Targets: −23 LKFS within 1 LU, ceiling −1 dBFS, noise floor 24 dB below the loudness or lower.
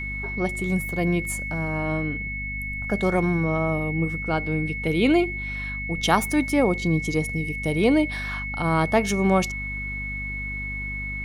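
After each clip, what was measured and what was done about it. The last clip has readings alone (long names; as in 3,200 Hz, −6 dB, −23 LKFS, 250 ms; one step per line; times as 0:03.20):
mains hum 50 Hz; hum harmonics up to 250 Hz; level of the hum −32 dBFS; interfering tone 2,200 Hz; level of the tone −30 dBFS; integrated loudness −24.5 LKFS; sample peak −4.5 dBFS; target loudness −23.0 LKFS
→ mains-hum notches 50/100/150/200/250 Hz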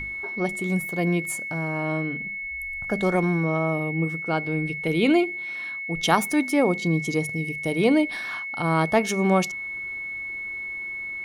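mains hum none found; interfering tone 2,200 Hz; level of the tone −30 dBFS
→ notch filter 2,200 Hz, Q 30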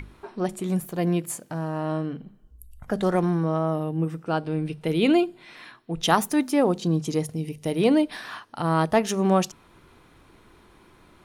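interfering tone none found; integrated loudness −25.0 LKFS; sample peak −5.0 dBFS; target loudness −23.0 LKFS
→ level +2 dB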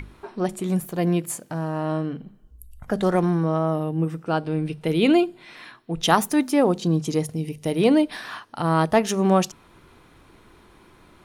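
integrated loudness −23.0 LKFS; sample peak −3.0 dBFS; background noise floor −53 dBFS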